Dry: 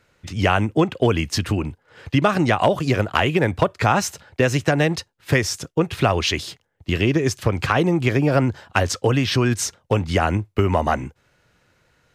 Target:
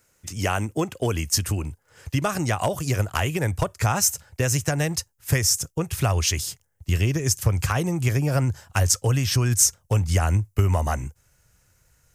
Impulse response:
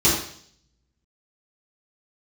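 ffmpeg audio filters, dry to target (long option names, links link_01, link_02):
-af "asubboost=boost=5.5:cutoff=110,aexciter=amount=7.9:drive=2.8:freq=5500,volume=-6.5dB"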